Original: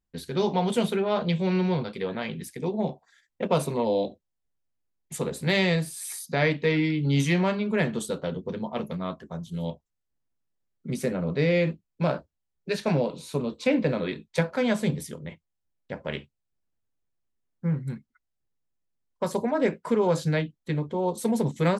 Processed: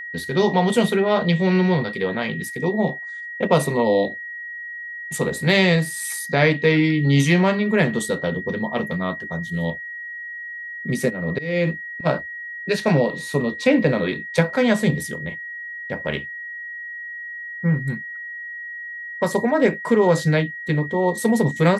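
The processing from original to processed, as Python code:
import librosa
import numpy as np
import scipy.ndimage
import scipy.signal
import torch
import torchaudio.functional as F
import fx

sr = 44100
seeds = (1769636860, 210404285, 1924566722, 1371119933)

y = fx.auto_swell(x, sr, attack_ms=339.0, at=(11.09, 12.05), fade=0.02)
y = y + 10.0 ** (-37.0 / 20.0) * np.sin(2.0 * np.pi * 1900.0 * np.arange(len(y)) / sr)
y = y * librosa.db_to_amplitude(6.5)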